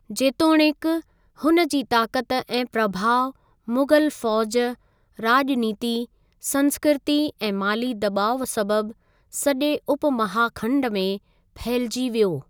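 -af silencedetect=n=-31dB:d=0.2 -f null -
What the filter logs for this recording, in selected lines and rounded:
silence_start: 1.00
silence_end: 1.42 | silence_duration: 0.42
silence_start: 3.30
silence_end: 3.68 | silence_duration: 0.38
silence_start: 4.73
silence_end: 5.19 | silence_duration: 0.46
silence_start: 6.04
silence_end: 6.44 | silence_duration: 0.40
silence_start: 8.91
silence_end: 9.34 | silence_duration: 0.43
silence_start: 11.17
silence_end: 11.56 | silence_duration: 0.39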